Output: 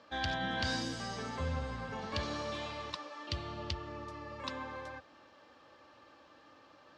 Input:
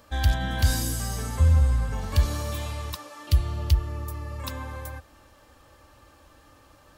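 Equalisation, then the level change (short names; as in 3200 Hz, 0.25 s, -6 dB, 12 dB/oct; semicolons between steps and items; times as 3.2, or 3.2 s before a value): HPF 210 Hz 12 dB/oct; LPF 5100 Hz 24 dB/oct; -3.0 dB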